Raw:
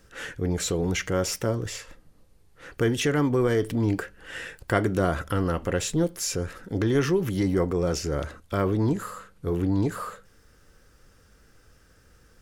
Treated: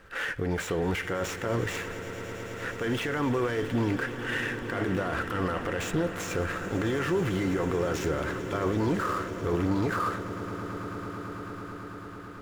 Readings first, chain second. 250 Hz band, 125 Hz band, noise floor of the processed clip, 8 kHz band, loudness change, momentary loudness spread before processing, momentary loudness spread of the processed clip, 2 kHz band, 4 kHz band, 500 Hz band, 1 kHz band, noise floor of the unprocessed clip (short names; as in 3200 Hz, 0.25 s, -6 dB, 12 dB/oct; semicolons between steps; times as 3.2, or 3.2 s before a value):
-3.0 dB, -4.5 dB, -41 dBFS, -8.5 dB, -4.0 dB, 13 LU, 10 LU, +2.5 dB, -3.5 dB, -3.0 dB, +1.5 dB, -58 dBFS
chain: median filter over 9 samples; tilt shelf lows -7.5 dB, about 650 Hz; in parallel at -1.5 dB: negative-ratio compressor -32 dBFS; on the sum: limiter -19 dBFS, peak gain reduction 14.5 dB; high shelf 3500 Hz -10.5 dB; on a send: swelling echo 0.11 s, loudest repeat 8, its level -17.5 dB